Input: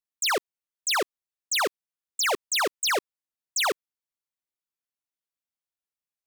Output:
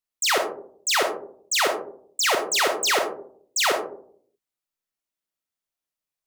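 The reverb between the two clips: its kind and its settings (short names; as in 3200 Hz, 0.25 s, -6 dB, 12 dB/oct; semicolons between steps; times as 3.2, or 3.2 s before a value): digital reverb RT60 0.58 s, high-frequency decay 0.3×, pre-delay 5 ms, DRR 2 dB; gain +2 dB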